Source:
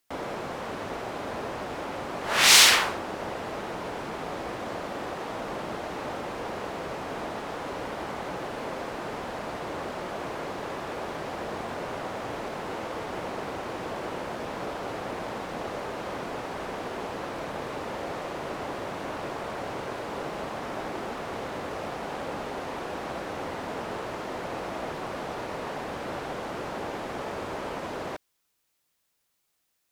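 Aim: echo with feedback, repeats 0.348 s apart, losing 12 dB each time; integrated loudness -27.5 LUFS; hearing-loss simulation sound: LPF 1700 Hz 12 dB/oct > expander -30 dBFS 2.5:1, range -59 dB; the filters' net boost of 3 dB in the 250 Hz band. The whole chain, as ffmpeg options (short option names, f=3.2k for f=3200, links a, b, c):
-af "lowpass=1.7k,equalizer=f=250:t=o:g=4,aecho=1:1:348|696|1044:0.251|0.0628|0.0157,agate=range=-59dB:threshold=-30dB:ratio=2.5,volume=6dB"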